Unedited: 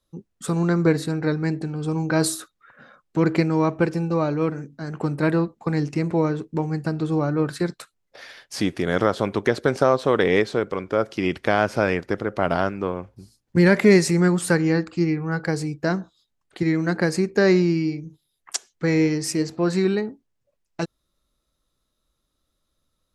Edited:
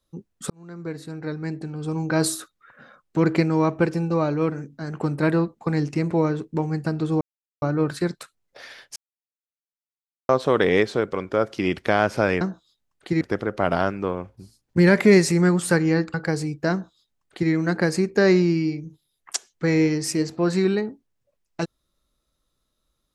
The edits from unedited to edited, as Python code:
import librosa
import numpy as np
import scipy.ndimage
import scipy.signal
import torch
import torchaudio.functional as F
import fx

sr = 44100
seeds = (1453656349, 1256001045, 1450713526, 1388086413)

y = fx.edit(x, sr, fx.fade_in_span(start_s=0.5, length_s=1.86),
    fx.insert_silence(at_s=7.21, length_s=0.41),
    fx.silence(start_s=8.55, length_s=1.33),
    fx.cut(start_s=14.93, length_s=0.41),
    fx.duplicate(start_s=15.91, length_s=0.8, to_s=12.0), tone=tone)